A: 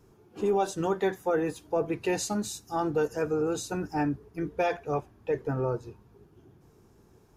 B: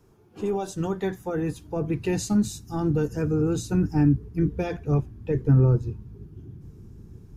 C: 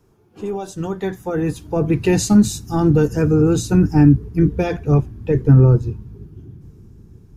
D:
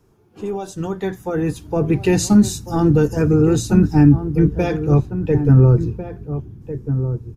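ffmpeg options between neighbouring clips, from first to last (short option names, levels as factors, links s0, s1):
-filter_complex "[0:a]asubboost=boost=9.5:cutoff=220,acrossover=split=520|4200[s0][s1][s2];[s1]alimiter=level_in=1.5:limit=0.0631:level=0:latency=1:release=244,volume=0.668[s3];[s0][s3][s2]amix=inputs=3:normalize=0"
-af "dynaudnorm=f=220:g=13:m=3.16,volume=1.12"
-filter_complex "[0:a]asplit=2[s0][s1];[s1]adelay=1399,volume=0.316,highshelf=f=4000:g=-31.5[s2];[s0][s2]amix=inputs=2:normalize=0"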